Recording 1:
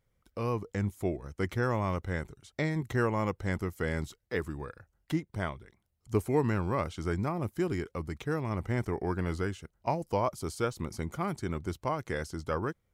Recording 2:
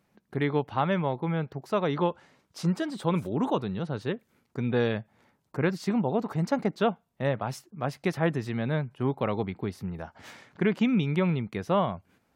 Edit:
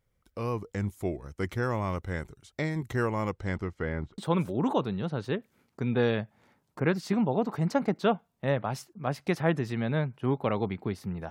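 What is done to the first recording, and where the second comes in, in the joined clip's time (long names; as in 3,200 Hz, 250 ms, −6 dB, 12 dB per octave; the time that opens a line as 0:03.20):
recording 1
0:03.29–0:04.18: low-pass filter 10,000 Hz → 1,100 Hz
0:04.18: continue with recording 2 from 0:02.95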